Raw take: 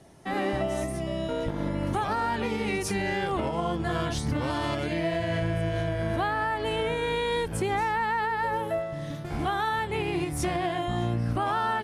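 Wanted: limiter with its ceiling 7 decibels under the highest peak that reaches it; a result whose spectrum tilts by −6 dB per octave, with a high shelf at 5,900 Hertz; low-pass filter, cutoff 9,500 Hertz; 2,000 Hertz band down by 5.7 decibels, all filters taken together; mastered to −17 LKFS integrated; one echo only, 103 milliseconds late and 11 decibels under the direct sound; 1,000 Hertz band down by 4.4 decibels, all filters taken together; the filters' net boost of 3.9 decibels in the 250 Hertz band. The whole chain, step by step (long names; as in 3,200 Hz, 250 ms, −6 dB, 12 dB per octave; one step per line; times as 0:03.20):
low-pass filter 9,500 Hz
parametric band 250 Hz +6 dB
parametric band 1,000 Hz −5 dB
parametric band 2,000 Hz −4.5 dB
high-shelf EQ 5,900 Hz −8 dB
brickwall limiter −22 dBFS
single-tap delay 103 ms −11 dB
level +13.5 dB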